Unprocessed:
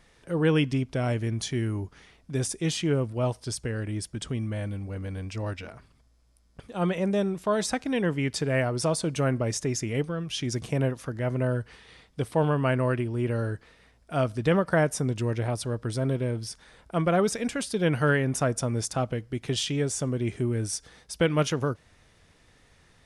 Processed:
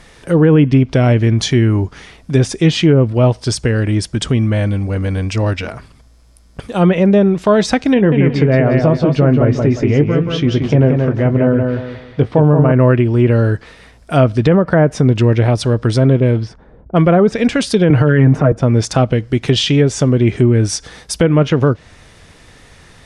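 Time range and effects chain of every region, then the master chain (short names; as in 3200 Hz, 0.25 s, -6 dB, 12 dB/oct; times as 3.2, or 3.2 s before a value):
7.94–12.72 tape spacing loss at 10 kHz 27 dB + doubler 20 ms -11 dB + feedback echo 0.178 s, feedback 30%, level -5 dB
16.2–17.15 low-pass opened by the level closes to 330 Hz, open at -21.5 dBFS + high shelf 5900 Hz +8.5 dB
17.9–18.52 comb 6.5 ms, depth 75% + three-band squash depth 100%
whole clip: dynamic EQ 1100 Hz, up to -5 dB, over -37 dBFS, Q 0.77; treble ducked by the level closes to 1400 Hz, closed at -20 dBFS; maximiser +17.5 dB; gain -1 dB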